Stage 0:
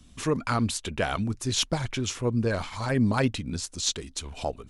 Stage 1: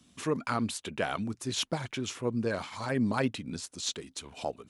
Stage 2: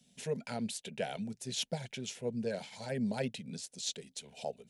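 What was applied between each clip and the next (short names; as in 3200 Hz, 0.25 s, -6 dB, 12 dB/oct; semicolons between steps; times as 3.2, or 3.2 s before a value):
HPF 150 Hz 12 dB/oct; dynamic EQ 6000 Hz, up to -4 dB, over -42 dBFS, Q 0.99; gain -3.5 dB
fixed phaser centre 310 Hz, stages 6; gain -3 dB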